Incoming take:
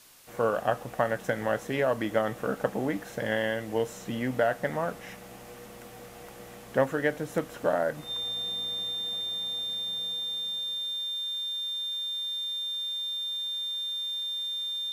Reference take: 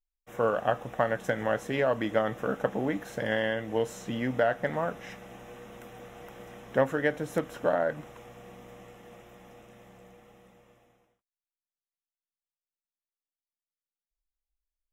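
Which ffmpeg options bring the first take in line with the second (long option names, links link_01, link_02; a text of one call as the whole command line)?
ffmpeg -i in.wav -af "bandreject=frequency=3600:width=30,afwtdn=0.002" out.wav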